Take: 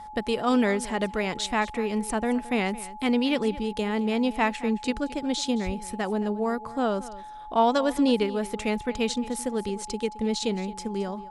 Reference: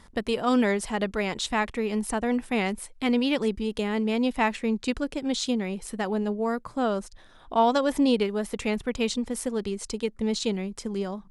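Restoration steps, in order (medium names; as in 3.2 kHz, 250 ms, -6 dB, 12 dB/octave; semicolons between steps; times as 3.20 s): band-stop 850 Hz, Q 30; 5.65–5.77 s: high-pass 140 Hz 24 dB/octave; inverse comb 219 ms -17.5 dB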